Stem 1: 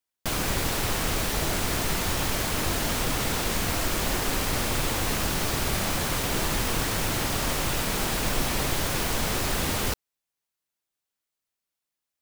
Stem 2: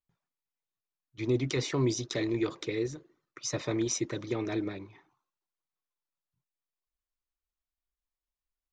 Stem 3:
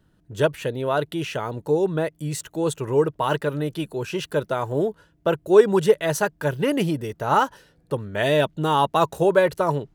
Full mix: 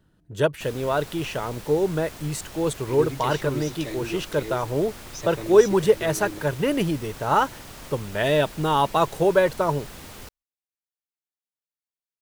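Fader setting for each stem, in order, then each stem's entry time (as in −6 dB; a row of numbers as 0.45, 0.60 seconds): −14.5, −3.5, −1.0 decibels; 0.35, 1.70, 0.00 seconds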